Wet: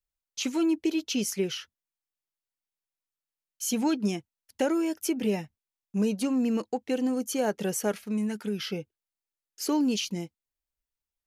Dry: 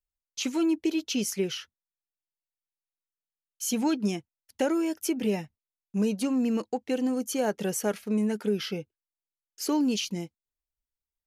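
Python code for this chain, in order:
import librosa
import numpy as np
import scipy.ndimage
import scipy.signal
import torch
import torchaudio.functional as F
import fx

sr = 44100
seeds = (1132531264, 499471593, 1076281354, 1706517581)

y = fx.peak_eq(x, sr, hz=480.0, db=-7.5, octaves=1.6, at=(8.06, 8.67))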